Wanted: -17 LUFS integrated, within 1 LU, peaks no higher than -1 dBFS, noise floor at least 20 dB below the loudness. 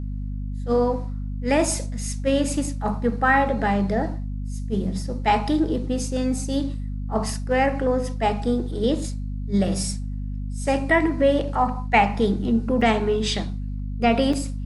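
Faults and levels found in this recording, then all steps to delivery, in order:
dropouts 2; longest dropout 4.2 ms; hum 50 Hz; highest harmonic 250 Hz; hum level -26 dBFS; loudness -23.5 LUFS; peak level -6.0 dBFS; loudness target -17.0 LUFS
-> interpolate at 12.81/14.33 s, 4.2 ms; hum notches 50/100/150/200/250 Hz; trim +6.5 dB; peak limiter -1 dBFS

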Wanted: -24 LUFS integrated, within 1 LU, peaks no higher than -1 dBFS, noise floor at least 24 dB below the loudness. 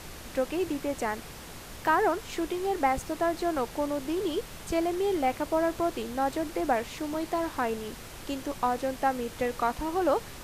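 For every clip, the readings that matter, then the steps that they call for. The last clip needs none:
noise floor -44 dBFS; noise floor target -54 dBFS; loudness -29.5 LUFS; peak level -13.0 dBFS; loudness target -24.0 LUFS
-> noise print and reduce 10 dB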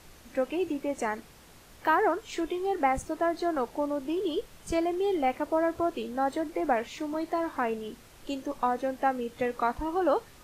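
noise floor -53 dBFS; noise floor target -54 dBFS
-> noise print and reduce 6 dB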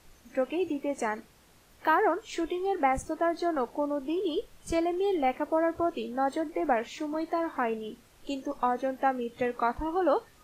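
noise floor -59 dBFS; loudness -30.0 LUFS; peak level -13.0 dBFS; loudness target -24.0 LUFS
-> trim +6 dB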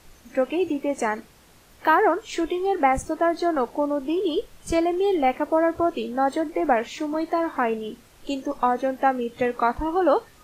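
loudness -24.0 LUFS; peak level -7.0 dBFS; noise floor -53 dBFS

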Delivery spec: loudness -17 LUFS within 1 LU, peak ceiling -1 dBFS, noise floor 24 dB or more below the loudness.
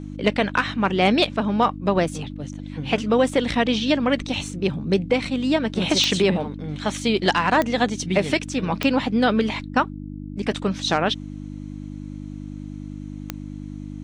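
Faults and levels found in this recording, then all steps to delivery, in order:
clicks found 4; hum 50 Hz; highest harmonic 300 Hz; hum level -31 dBFS; loudness -22.0 LUFS; peak level -7.0 dBFS; loudness target -17.0 LUFS
-> de-click; de-hum 50 Hz, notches 6; trim +5 dB

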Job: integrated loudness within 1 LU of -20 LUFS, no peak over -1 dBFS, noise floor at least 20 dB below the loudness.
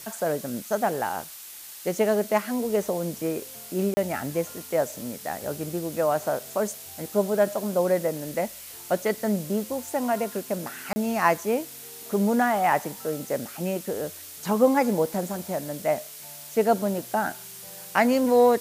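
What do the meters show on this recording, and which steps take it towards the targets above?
dropouts 2; longest dropout 30 ms; noise floor -42 dBFS; noise floor target -47 dBFS; loudness -26.5 LUFS; peak level -6.0 dBFS; loudness target -20.0 LUFS
-> interpolate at 3.94/10.93 s, 30 ms; noise reduction 6 dB, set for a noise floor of -42 dBFS; trim +6.5 dB; peak limiter -1 dBFS

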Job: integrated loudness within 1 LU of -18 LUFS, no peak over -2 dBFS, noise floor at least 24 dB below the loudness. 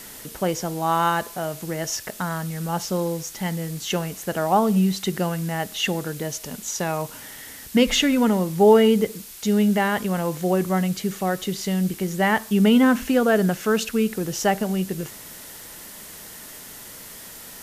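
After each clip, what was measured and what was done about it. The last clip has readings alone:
noise floor -41 dBFS; noise floor target -47 dBFS; loudness -22.5 LUFS; peak level -5.0 dBFS; loudness target -18.0 LUFS
-> noise reduction 6 dB, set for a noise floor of -41 dBFS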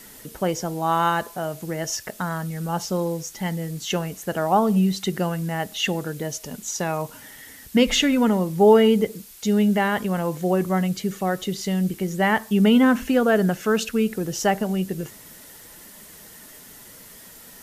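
noise floor -45 dBFS; noise floor target -47 dBFS
-> noise reduction 6 dB, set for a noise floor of -45 dBFS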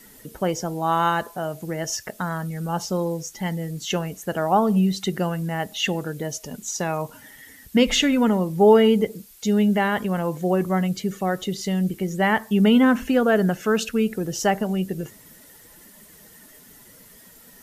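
noise floor -49 dBFS; loudness -22.5 LUFS; peak level -5.5 dBFS; loudness target -18.0 LUFS
-> trim +4.5 dB; peak limiter -2 dBFS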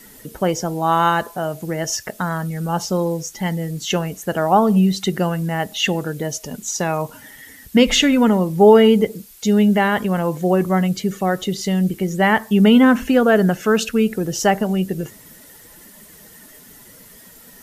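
loudness -18.0 LUFS; peak level -2.0 dBFS; noise floor -45 dBFS

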